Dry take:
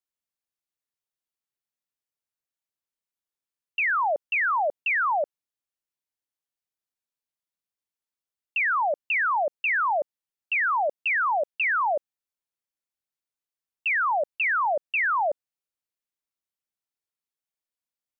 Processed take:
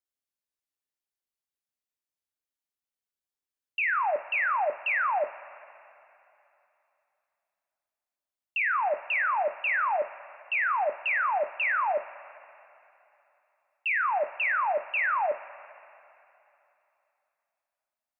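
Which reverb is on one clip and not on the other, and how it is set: two-slope reverb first 0.25 s, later 3 s, from -18 dB, DRR 7 dB; trim -3.5 dB

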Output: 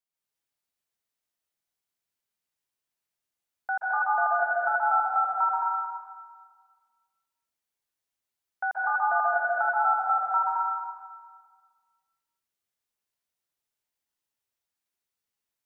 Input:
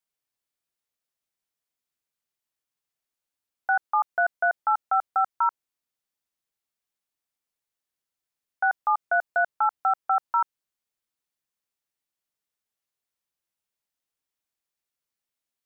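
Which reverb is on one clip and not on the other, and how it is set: plate-style reverb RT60 1.6 s, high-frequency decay 1×, pre-delay 120 ms, DRR -6 dB; trim -6.5 dB

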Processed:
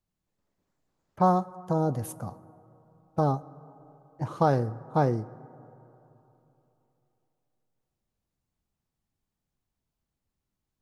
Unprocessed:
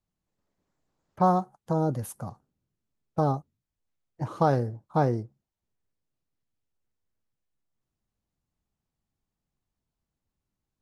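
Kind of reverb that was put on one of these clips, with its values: plate-style reverb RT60 3.3 s, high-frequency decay 0.3×, DRR 18.5 dB

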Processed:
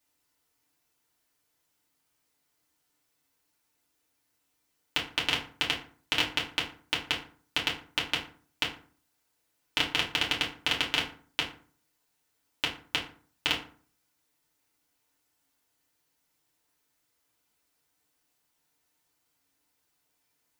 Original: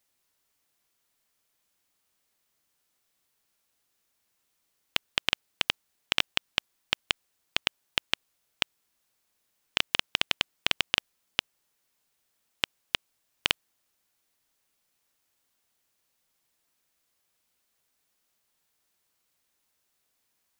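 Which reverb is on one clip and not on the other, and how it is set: FDN reverb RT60 0.45 s, low-frequency decay 1.25×, high-frequency decay 0.6×, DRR -5 dB; trim -5 dB

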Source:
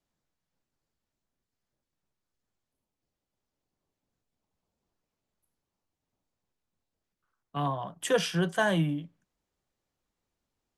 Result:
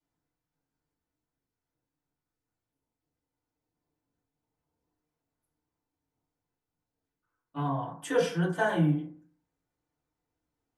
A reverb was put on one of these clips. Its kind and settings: FDN reverb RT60 0.51 s, low-frequency decay 1.05×, high-frequency decay 0.3×, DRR -9.5 dB; trim -11.5 dB

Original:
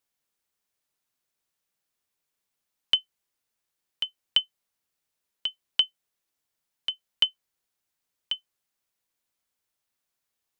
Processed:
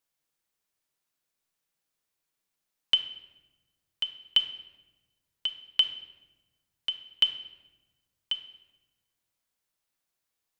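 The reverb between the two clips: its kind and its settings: simulated room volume 720 m³, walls mixed, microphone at 0.62 m; trim -1.5 dB

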